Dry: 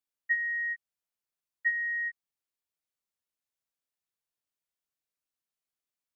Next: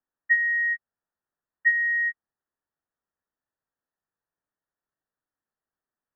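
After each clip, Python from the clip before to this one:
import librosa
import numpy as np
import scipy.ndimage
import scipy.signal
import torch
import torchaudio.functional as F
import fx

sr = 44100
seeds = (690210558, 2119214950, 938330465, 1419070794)

y = scipy.signal.sosfilt(scipy.signal.cheby1(10, 1.0, 1900.0, 'lowpass', fs=sr, output='sos'), x)
y = y * librosa.db_to_amplitude(7.5)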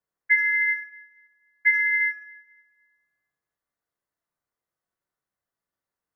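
y = x * np.sin(2.0 * np.pi * 190.0 * np.arange(len(x)) / sr)
y = fx.echo_tape(y, sr, ms=69, feedback_pct=49, wet_db=-13, lp_hz=1700.0, drive_db=18.0, wow_cents=12)
y = fx.rev_double_slope(y, sr, seeds[0], early_s=0.46, late_s=1.5, knee_db=-18, drr_db=0.0)
y = y * librosa.db_to_amplitude(2.0)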